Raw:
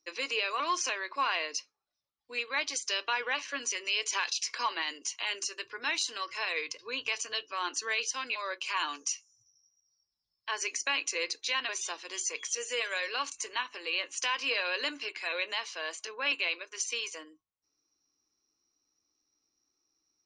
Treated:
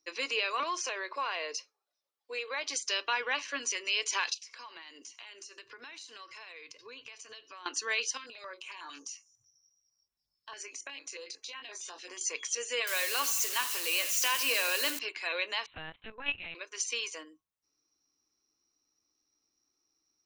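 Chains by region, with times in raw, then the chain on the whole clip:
0.63–2.69 s: resonant high-pass 440 Hz, resonance Q 1.9 + compression 2:1, threshold -34 dBFS
4.34–7.66 s: compression 5:1, threshold -46 dBFS + delay 91 ms -21.5 dB
8.17–12.21 s: doubling 22 ms -7 dB + compression 5:1, threshold -39 dBFS + step-sequenced notch 11 Hz 790–4800 Hz
12.87–14.99 s: zero-crossing glitches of -25.5 dBFS + high-pass 77 Hz 24 dB/octave + bit-crushed delay 83 ms, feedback 55%, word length 9-bit, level -14 dB
15.66–16.55 s: level held to a coarse grid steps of 14 dB + LPC vocoder at 8 kHz pitch kept
whole clip: none

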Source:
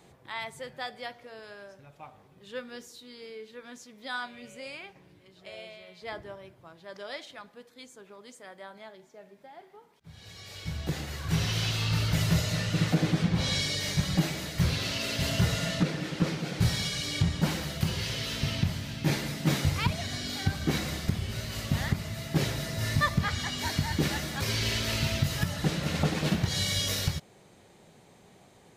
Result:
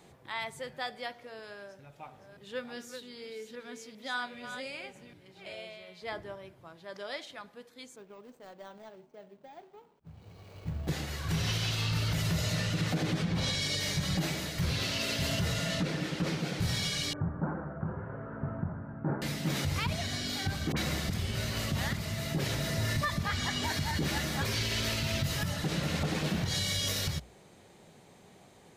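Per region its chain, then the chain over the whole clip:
1.58–5.55 s: chunks repeated in reverse 395 ms, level -8 dB + band-stop 1.1 kHz, Q 14
7.96–10.88 s: median filter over 25 samples + careless resampling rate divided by 2×, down filtered, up hold
17.13–19.22 s: Chebyshev low-pass 1.5 kHz, order 5 + bass shelf 100 Hz -11.5 dB
20.72–24.53 s: phase dispersion highs, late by 48 ms, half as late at 1.4 kHz + three bands compressed up and down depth 40%
whole clip: hum notches 60/120 Hz; peak limiter -22 dBFS

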